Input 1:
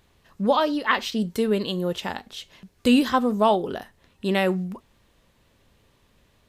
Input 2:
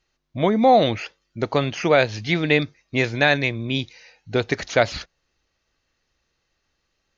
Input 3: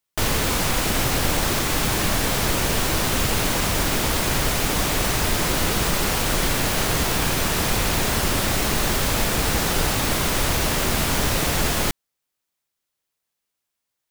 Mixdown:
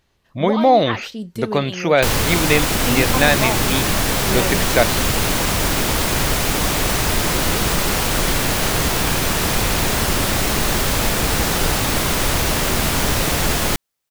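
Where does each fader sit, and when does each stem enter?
-4.5, +1.5, +3.0 dB; 0.00, 0.00, 1.85 s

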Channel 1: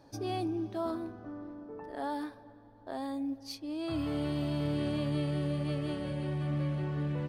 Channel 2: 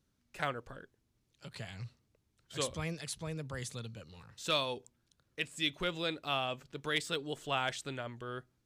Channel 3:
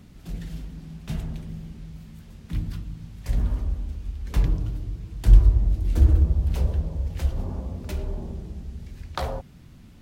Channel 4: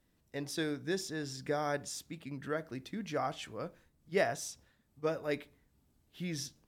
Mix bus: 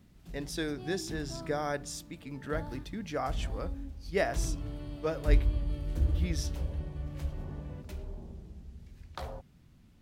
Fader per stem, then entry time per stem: -12.0 dB, off, -11.5 dB, +1.0 dB; 0.55 s, off, 0.00 s, 0.00 s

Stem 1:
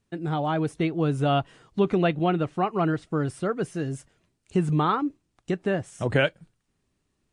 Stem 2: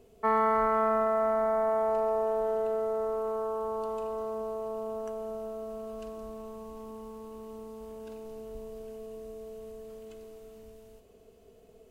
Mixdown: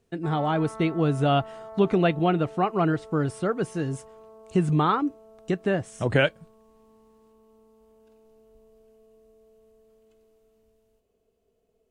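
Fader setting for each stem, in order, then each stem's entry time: +1.0, -14.5 dB; 0.00, 0.00 s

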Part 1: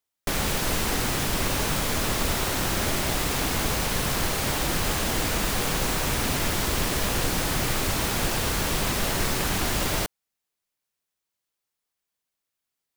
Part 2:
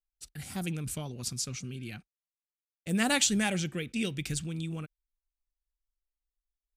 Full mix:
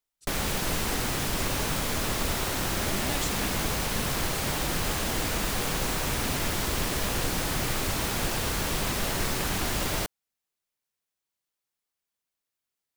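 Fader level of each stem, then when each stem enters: -3.0, -10.5 dB; 0.00, 0.00 s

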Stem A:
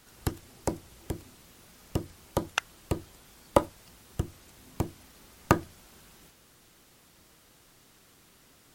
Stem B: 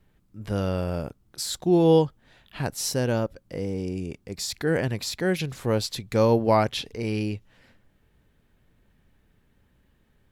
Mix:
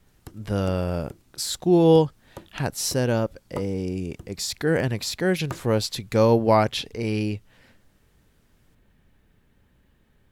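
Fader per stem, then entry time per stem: -12.5, +2.0 dB; 0.00, 0.00 s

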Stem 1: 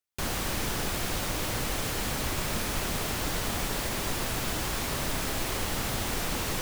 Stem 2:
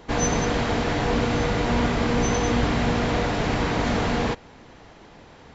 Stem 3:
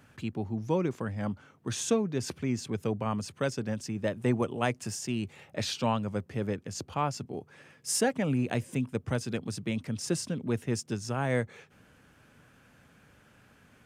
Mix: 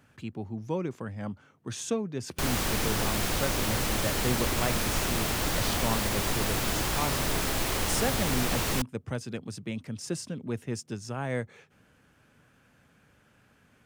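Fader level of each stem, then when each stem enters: +2.0 dB, off, -3.0 dB; 2.20 s, off, 0.00 s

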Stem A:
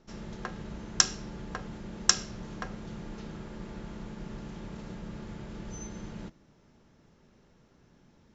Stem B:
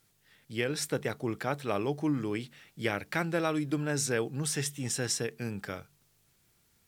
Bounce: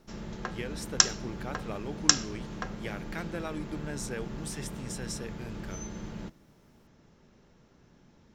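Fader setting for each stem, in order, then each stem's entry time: +1.5, -8.0 dB; 0.00, 0.00 s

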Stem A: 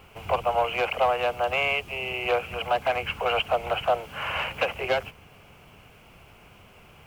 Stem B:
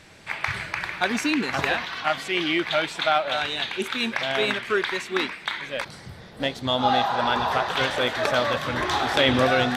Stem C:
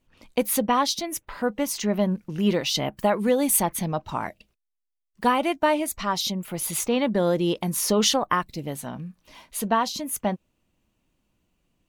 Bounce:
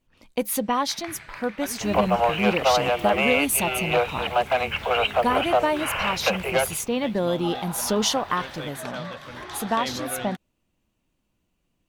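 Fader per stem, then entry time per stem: +2.5, -12.5, -2.0 dB; 1.65, 0.60, 0.00 s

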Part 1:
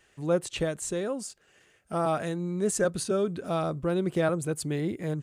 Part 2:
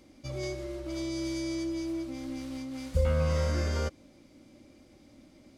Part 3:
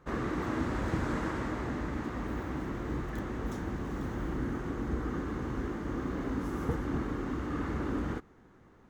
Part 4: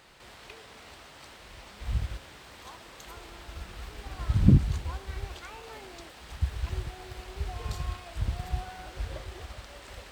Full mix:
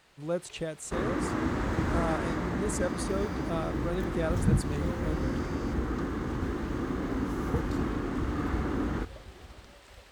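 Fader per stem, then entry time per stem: -6.0, -12.0, +2.5, -7.0 dB; 0.00, 1.85, 0.85, 0.00 s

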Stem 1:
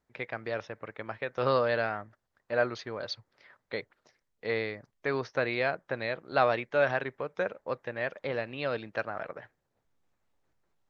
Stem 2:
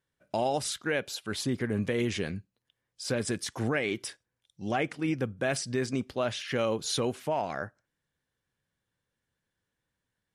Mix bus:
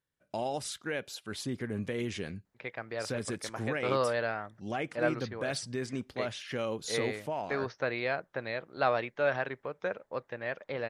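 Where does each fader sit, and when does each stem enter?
-3.0, -5.5 dB; 2.45, 0.00 s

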